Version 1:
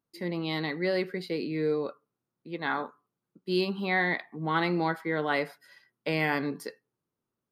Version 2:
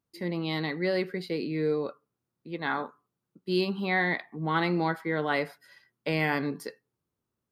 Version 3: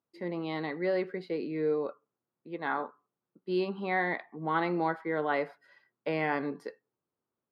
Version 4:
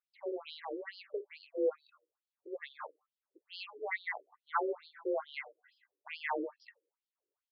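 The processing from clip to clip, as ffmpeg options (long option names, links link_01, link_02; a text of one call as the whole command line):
ffmpeg -i in.wav -af "equalizer=frequency=68:width=1.1:gain=10" out.wav
ffmpeg -i in.wav -af "bandpass=frequency=690:width_type=q:width=0.57:csg=0" out.wav
ffmpeg -i in.wav -af "afreqshift=36,afftfilt=real='re*between(b*sr/1024,390*pow(4100/390,0.5+0.5*sin(2*PI*2.3*pts/sr))/1.41,390*pow(4100/390,0.5+0.5*sin(2*PI*2.3*pts/sr))*1.41)':imag='im*between(b*sr/1024,390*pow(4100/390,0.5+0.5*sin(2*PI*2.3*pts/sr))/1.41,390*pow(4100/390,0.5+0.5*sin(2*PI*2.3*pts/sr))*1.41)':win_size=1024:overlap=0.75" out.wav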